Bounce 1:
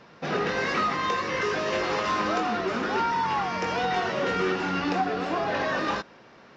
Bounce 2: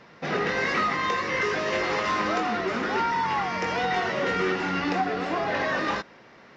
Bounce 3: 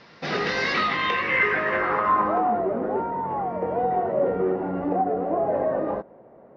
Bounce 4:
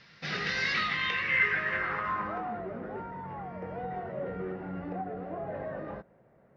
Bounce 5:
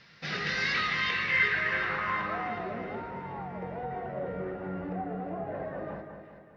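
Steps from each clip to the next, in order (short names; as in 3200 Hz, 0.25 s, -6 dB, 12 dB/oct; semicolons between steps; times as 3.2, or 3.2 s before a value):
bell 2000 Hz +6.5 dB 0.24 oct
low-pass sweep 4800 Hz -> 620 Hz, 0.61–2.74
band shelf 510 Hz -10.5 dB 2.6 oct; gain -3.5 dB
split-band echo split 2000 Hz, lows 0.201 s, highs 0.369 s, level -7 dB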